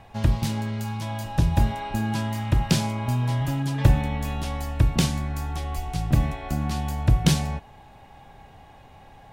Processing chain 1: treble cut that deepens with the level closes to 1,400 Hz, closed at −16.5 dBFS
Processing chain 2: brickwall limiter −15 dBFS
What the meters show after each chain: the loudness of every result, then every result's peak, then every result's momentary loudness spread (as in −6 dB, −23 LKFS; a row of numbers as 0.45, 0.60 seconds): −25.5, −27.5 LKFS; −4.0, −15.0 dBFS; 9, 5 LU